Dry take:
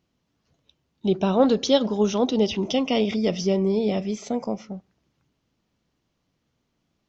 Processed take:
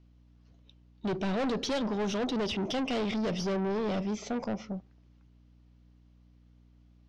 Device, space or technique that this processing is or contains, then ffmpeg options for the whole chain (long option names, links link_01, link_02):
valve amplifier with mains hum: -af "aeval=exprs='(tanh(25.1*val(0)+0.2)-tanh(0.2))/25.1':channel_layout=same,aeval=exprs='val(0)+0.00126*(sin(2*PI*60*n/s)+sin(2*PI*2*60*n/s)/2+sin(2*PI*3*60*n/s)/3+sin(2*PI*4*60*n/s)/4+sin(2*PI*5*60*n/s)/5)':channel_layout=same,lowpass=5500"